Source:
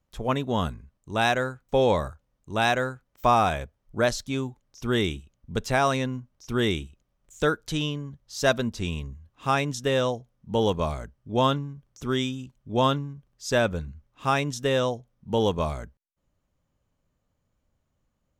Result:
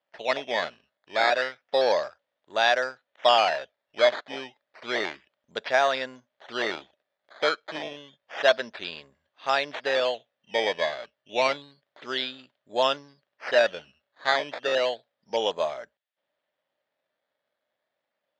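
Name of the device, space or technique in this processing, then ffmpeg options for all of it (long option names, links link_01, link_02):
circuit-bent sampling toy: -af "acrusher=samples=11:mix=1:aa=0.000001:lfo=1:lforange=11:lforate=0.3,highpass=580,equalizer=frequency=610:width_type=q:width=4:gain=8,equalizer=frequency=1100:width_type=q:width=4:gain=-4,equalizer=frequency=1800:width_type=q:width=4:gain=6,equalizer=frequency=3400:width_type=q:width=4:gain=6,lowpass=frequency=4800:width=0.5412,lowpass=frequency=4800:width=1.3066"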